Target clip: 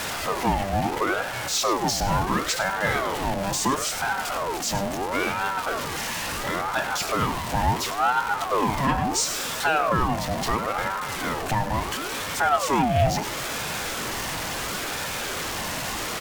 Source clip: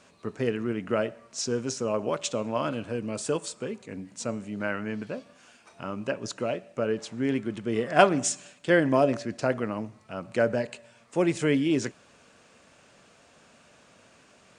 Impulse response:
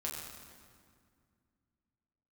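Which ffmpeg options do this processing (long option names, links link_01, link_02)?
-filter_complex "[0:a]aeval=exprs='val(0)+0.5*0.0473*sgn(val(0))':channel_layout=same,bandreject=frequency=227.1:width_type=h:width=4,bandreject=frequency=454.2:width_type=h:width=4,bandreject=frequency=681.3:width_type=h:width=4,bandreject=frequency=908.4:width_type=h:width=4,bandreject=frequency=1135.5:width_type=h:width=4,bandreject=frequency=1362.6:width_type=h:width=4,bandreject=frequency=1589.7:width_type=h:width=4,bandreject=frequency=1816.8:width_type=h:width=4,bandreject=frequency=2043.9:width_type=h:width=4,bandreject=frequency=2271:width_type=h:width=4,asetrate=39690,aresample=44100,asplit=2[link_01][link_02];[link_02]adelay=99.13,volume=-12dB,highshelf=frequency=4000:gain=-2.23[link_03];[link_01][link_03]amix=inputs=2:normalize=0,asplit=2[link_04][link_05];[link_05]aeval=exprs='0.794*sin(PI/2*1.78*val(0)/0.794)':channel_layout=same,volume=-11.5dB[link_06];[link_04][link_06]amix=inputs=2:normalize=0,alimiter=limit=-10.5dB:level=0:latency=1:release=389,aecho=1:1:3.1:0.34,aeval=exprs='val(0)*sin(2*PI*780*n/s+780*0.5/0.73*sin(2*PI*0.73*n/s))':channel_layout=same"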